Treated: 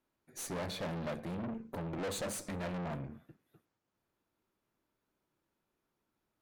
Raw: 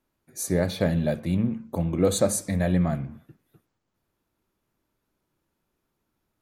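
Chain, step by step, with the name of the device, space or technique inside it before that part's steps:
tube preamp driven hard (tube saturation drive 34 dB, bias 0.7; low-shelf EQ 170 Hz −7.5 dB; high-shelf EQ 5,400 Hz −6 dB)

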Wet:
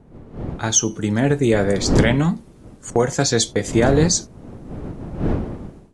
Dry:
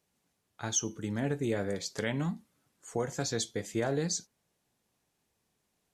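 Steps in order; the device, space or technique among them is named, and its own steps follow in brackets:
0:02.90–0:03.73: noise gate −42 dBFS, range −16 dB
smartphone video outdoors (wind on the microphone 270 Hz −40 dBFS; automatic gain control gain up to 15.5 dB; AAC 96 kbit/s 24,000 Hz)

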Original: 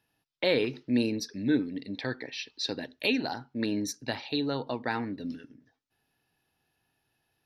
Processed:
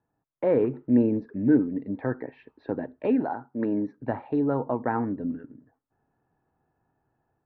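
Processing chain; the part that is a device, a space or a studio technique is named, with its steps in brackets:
0:03.23–0:03.97: high-pass filter 390 Hz → 170 Hz 6 dB per octave
action camera in a waterproof case (low-pass filter 1,300 Hz 24 dB per octave; automatic gain control gain up to 5 dB; level +1 dB; AAC 64 kbit/s 48,000 Hz)

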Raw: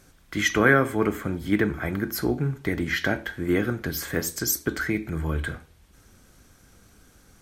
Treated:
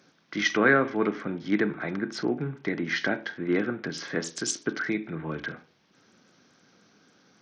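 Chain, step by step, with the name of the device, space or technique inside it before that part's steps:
Bluetooth headset (high-pass filter 160 Hz 24 dB per octave; downsampling to 16,000 Hz; level −2 dB; SBC 64 kbit/s 48,000 Hz)

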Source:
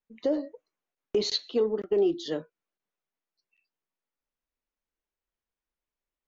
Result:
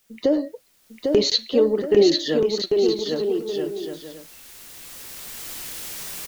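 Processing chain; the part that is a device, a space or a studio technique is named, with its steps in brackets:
cheap recorder with automatic gain (white noise bed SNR 40 dB; camcorder AGC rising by 9.5 dB per second)
parametric band 930 Hz −3.5 dB 1.6 octaves
bouncing-ball delay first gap 800 ms, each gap 0.6×, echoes 5
0:01.81–0:02.32: parametric band 1,800 Hz +10.5 dB 0.23 octaves
level +8.5 dB

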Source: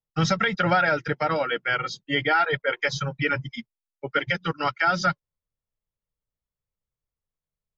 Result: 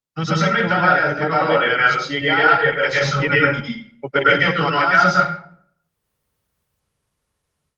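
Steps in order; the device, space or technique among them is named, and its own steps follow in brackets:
far-field microphone of a smart speaker (convolution reverb RT60 0.55 s, pre-delay 101 ms, DRR −6 dB; high-pass filter 91 Hz 12 dB per octave; automatic gain control gain up to 16 dB; level −1 dB; Opus 24 kbit/s 48,000 Hz)

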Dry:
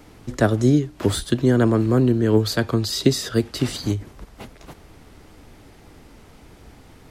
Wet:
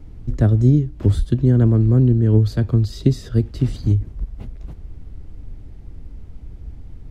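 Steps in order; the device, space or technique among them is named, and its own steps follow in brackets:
RIAA equalisation playback
smiley-face EQ (low-shelf EQ 130 Hz +7 dB; parametric band 1,100 Hz −3.5 dB 1.7 octaves; high-shelf EQ 5,800 Hz +8 dB)
level −8 dB

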